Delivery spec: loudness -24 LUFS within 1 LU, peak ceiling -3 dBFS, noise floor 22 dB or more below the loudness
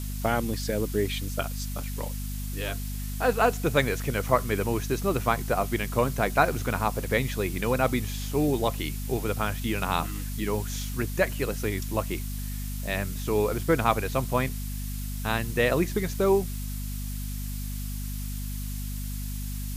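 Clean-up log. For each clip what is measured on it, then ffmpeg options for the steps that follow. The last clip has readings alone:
hum 50 Hz; highest harmonic 250 Hz; hum level -31 dBFS; noise floor -33 dBFS; noise floor target -51 dBFS; loudness -28.5 LUFS; peak level -7.5 dBFS; loudness target -24.0 LUFS
-> -af "bandreject=f=50:t=h:w=6,bandreject=f=100:t=h:w=6,bandreject=f=150:t=h:w=6,bandreject=f=200:t=h:w=6,bandreject=f=250:t=h:w=6"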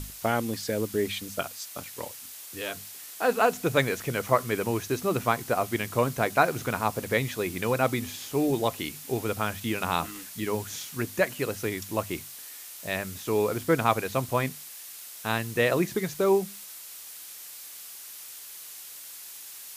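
hum not found; noise floor -44 dBFS; noise floor target -50 dBFS
-> -af "afftdn=nr=6:nf=-44"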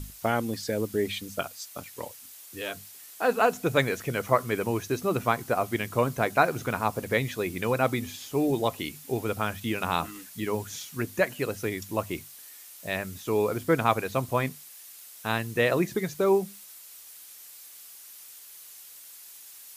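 noise floor -48 dBFS; noise floor target -50 dBFS
-> -af "afftdn=nr=6:nf=-48"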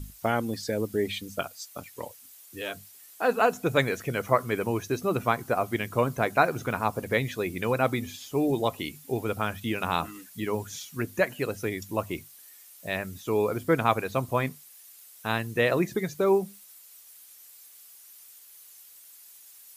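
noise floor -52 dBFS; loudness -28.5 LUFS; peak level -8.0 dBFS; loudness target -24.0 LUFS
-> -af "volume=1.68"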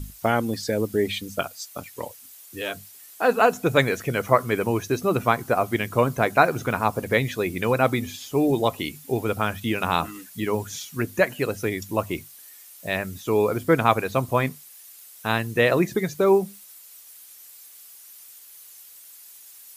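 loudness -23.5 LUFS; peak level -3.5 dBFS; noise floor -47 dBFS

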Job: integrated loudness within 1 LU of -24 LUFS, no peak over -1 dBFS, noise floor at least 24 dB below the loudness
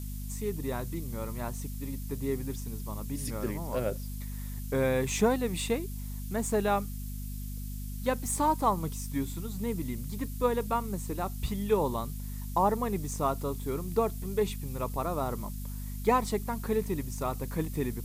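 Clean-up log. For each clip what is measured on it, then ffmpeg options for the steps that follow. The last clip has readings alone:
hum 50 Hz; highest harmonic 250 Hz; hum level -35 dBFS; noise floor -38 dBFS; noise floor target -56 dBFS; loudness -32.0 LUFS; peak level -12.0 dBFS; loudness target -24.0 LUFS
-> -af "bandreject=f=50:t=h:w=4,bandreject=f=100:t=h:w=4,bandreject=f=150:t=h:w=4,bandreject=f=200:t=h:w=4,bandreject=f=250:t=h:w=4"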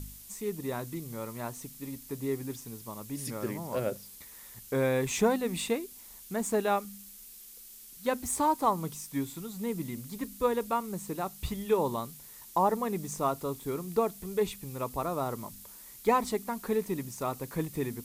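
hum not found; noise floor -50 dBFS; noise floor target -57 dBFS
-> -af "afftdn=nr=7:nf=-50"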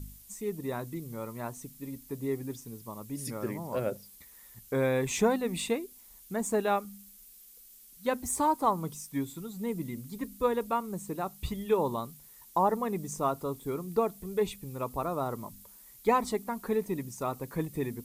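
noise floor -54 dBFS; noise floor target -57 dBFS
-> -af "afftdn=nr=6:nf=-54"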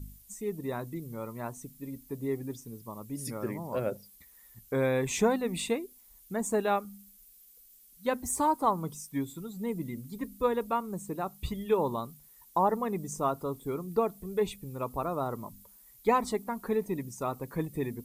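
noise floor -57 dBFS; loudness -32.5 LUFS; peak level -12.5 dBFS; loudness target -24.0 LUFS
-> -af "volume=2.66"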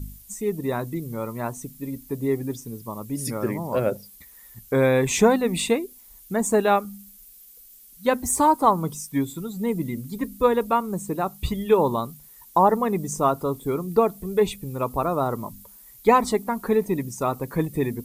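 loudness -24.0 LUFS; peak level -4.0 dBFS; noise floor -49 dBFS

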